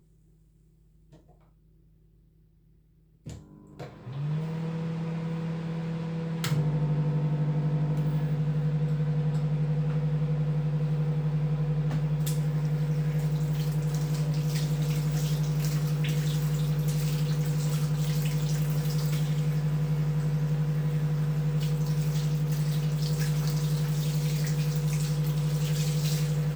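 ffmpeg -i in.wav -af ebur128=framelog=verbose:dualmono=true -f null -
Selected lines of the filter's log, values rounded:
Integrated loudness:
  I:         -25.2 LUFS
  Threshold: -35.9 LUFS
Loudness range:
  LRA:         6.0 LU
  Threshold: -45.7 LUFS
  LRA low:   -30.8 LUFS
  LRA high:  -24.8 LUFS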